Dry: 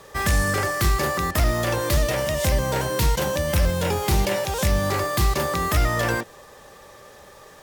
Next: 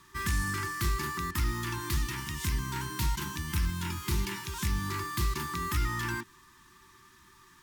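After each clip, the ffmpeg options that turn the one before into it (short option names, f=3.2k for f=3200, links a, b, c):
-af "afftfilt=real='re*(1-between(b*sr/4096,390,870))':imag='im*(1-between(b*sr/4096,390,870))':win_size=4096:overlap=0.75,volume=-9dB"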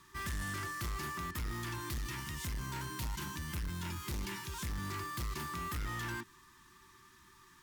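-af "asoftclip=type=tanh:threshold=-31.5dB,volume=-3dB"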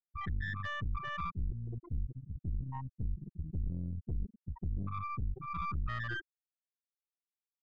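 -af "afftfilt=real='re*gte(hypot(re,im),0.0562)':imag='im*gte(hypot(re,im),0.0562)':win_size=1024:overlap=0.75,highshelf=f=3.3k:g=7,aeval=exprs='(tanh(100*val(0)+0.8)-tanh(0.8))/100':c=same,volume=9dB"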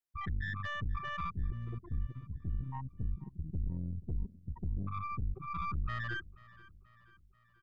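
-af "aecho=1:1:484|968|1452|1936:0.0891|0.0481|0.026|0.014"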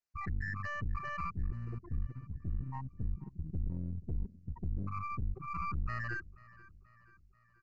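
-af "aresample=16000,aeval=exprs='clip(val(0),-1,0.00531)':c=same,aresample=44100,asuperstop=centerf=3400:order=20:qfactor=3.1"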